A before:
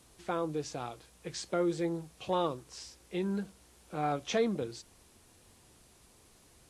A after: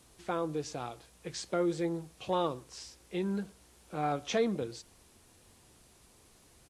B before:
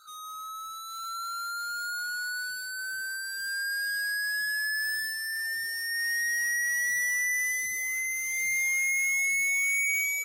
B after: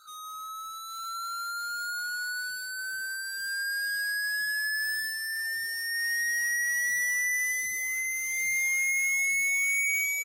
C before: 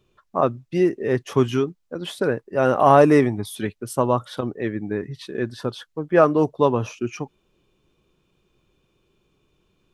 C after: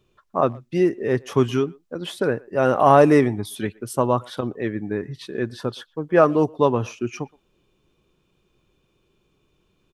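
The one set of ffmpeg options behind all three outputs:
-filter_complex "[0:a]asplit=2[link_01][link_02];[link_02]adelay=120,highpass=300,lowpass=3400,asoftclip=type=hard:threshold=-10dB,volume=-25dB[link_03];[link_01][link_03]amix=inputs=2:normalize=0"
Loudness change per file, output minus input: 0.0, 0.0, 0.0 LU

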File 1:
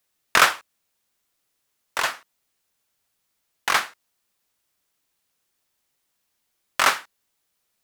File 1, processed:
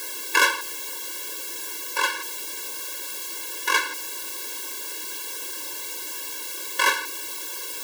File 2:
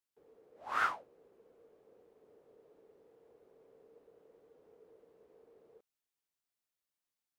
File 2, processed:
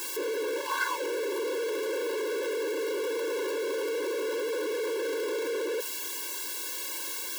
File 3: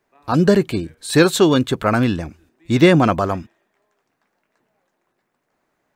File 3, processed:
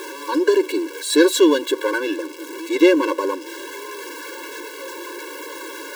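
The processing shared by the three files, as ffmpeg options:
-af "aeval=exprs='val(0)+0.5*0.0501*sgn(val(0))':channel_layout=same,acontrast=47,afftfilt=real='re*eq(mod(floor(b*sr/1024/290),2),1)':imag='im*eq(mod(floor(b*sr/1024/290),2),1)':win_size=1024:overlap=0.75,volume=-3.5dB"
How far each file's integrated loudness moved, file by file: −4.5, +5.0, −2.0 LU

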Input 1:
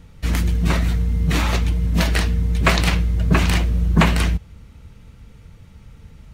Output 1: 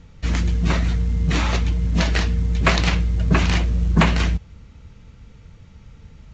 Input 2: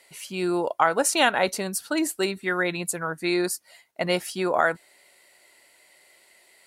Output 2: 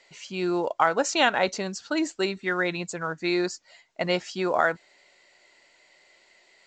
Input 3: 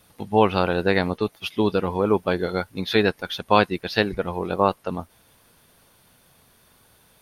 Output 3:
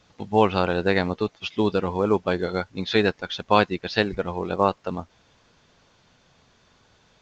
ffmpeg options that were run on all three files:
-af "volume=-1dB" -ar 16000 -c:a pcm_mulaw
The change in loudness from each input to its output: −1.0, −1.5, −1.0 LU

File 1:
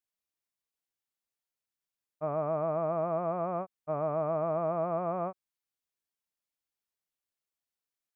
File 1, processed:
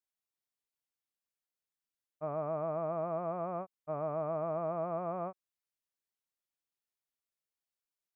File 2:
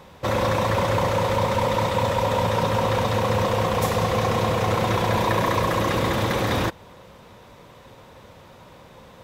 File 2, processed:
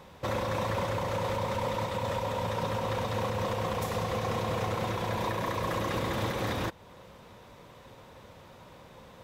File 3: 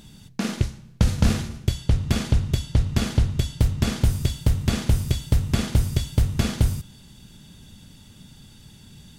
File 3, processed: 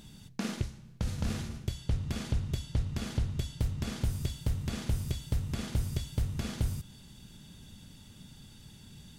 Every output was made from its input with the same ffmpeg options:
-af "alimiter=limit=-17dB:level=0:latency=1:release=308,volume=-4.5dB"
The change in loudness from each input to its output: −4.5, −9.5, −11.0 LU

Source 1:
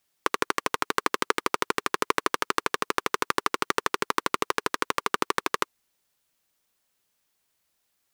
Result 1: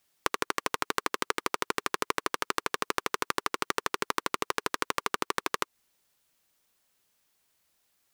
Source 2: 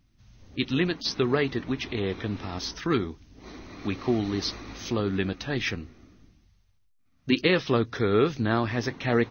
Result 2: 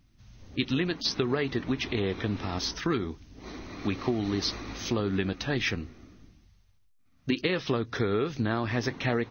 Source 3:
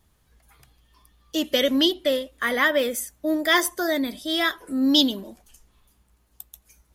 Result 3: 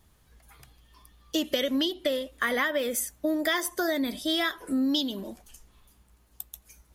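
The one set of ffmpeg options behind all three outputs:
-af "acompressor=threshold=-25dB:ratio=16,volume=2dB"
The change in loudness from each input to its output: −4.0, −2.5, −5.5 LU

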